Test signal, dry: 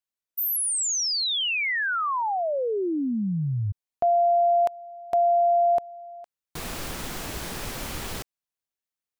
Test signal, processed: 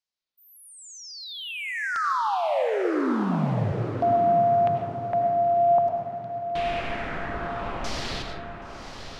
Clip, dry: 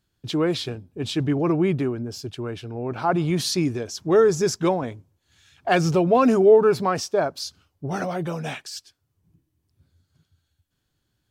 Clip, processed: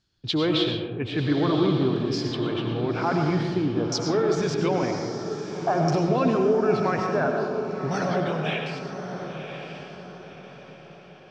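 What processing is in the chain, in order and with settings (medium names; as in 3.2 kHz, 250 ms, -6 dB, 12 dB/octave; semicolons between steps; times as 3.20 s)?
peak limiter -16.5 dBFS; LFO low-pass saw down 0.51 Hz 980–5500 Hz; echo that smears into a reverb 1051 ms, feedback 41%, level -8.5 dB; algorithmic reverb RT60 1.5 s, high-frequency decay 0.3×, pre-delay 60 ms, DRR 3 dB; trim -1 dB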